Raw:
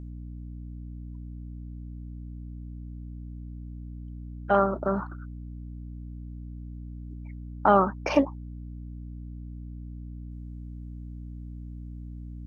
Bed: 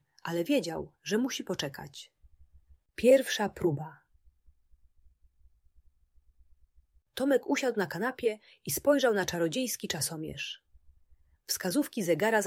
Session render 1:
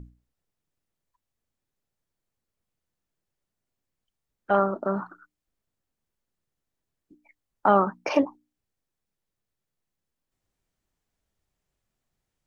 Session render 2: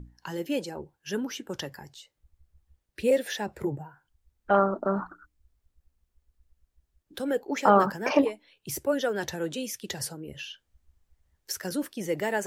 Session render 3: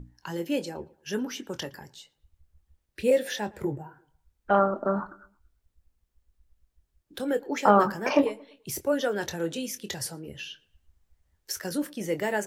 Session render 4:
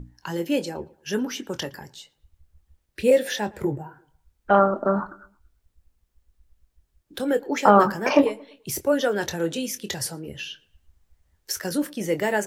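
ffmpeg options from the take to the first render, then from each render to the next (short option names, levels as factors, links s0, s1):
-af "bandreject=f=60:t=h:w=6,bandreject=f=120:t=h:w=6,bandreject=f=180:t=h:w=6,bandreject=f=240:t=h:w=6,bandreject=f=300:t=h:w=6"
-filter_complex "[1:a]volume=0.794[s0];[0:a][s0]amix=inputs=2:normalize=0"
-filter_complex "[0:a]asplit=2[s0][s1];[s1]adelay=24,volume=0.282[s2];[s0][s2]amix=inputs=2:normalize=0,asplit=2[s3][s4];[s4]adelay=114,lowpass=f=2600:p=1,volume=0.0708,asplit=2[s5][s6];[s6]adelay=114,lowpass=f=2600:p=1,volume=0.44,asplit=2[s7][s8];[s8]adelay=114,lowpass=f=2600:p=1,volume=0.44[s9];[s3][s5][s7][s9]amix=inputs=4:normalize=0"
-af "volume=1.68,alimiter=limit=0.794:level=0:latency=1"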